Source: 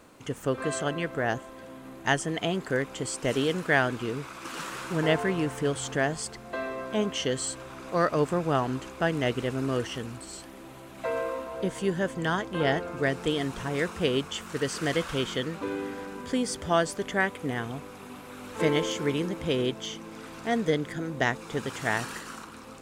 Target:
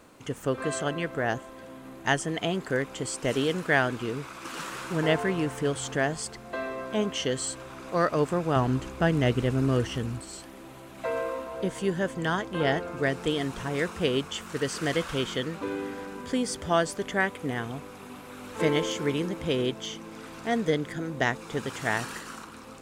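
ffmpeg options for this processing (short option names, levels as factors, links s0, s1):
-filter_complex "[0:a]asettb=1/sr,asplit=3[s0][s1][s2];[s0]atrim=end=8.564[s3];[s1]atrim=start=8.56:end=10.21,asetpts=PTS-STARTPTS,afade=t=in:d=0.004:c=qsin,afade=t=out:st=1.646:d=0.004:c=qsin,lowshelf=f=190:g=11[s4];[s2]atrim=start=10.206[s5];[s3][s4]acrossfade=d=0.004:c1=hsin:c2=qsin[s6];[s6][s5]acrossfade=d=0.004:c1=qsin:c2=hsin"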